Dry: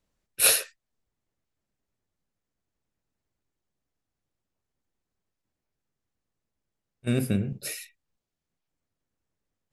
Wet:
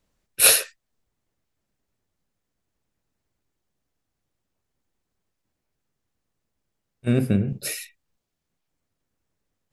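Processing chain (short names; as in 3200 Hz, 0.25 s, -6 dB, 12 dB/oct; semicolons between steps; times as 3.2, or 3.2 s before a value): 7.07–7.48 high shelf 3300 Hz -11.5 dB; gain +5 dB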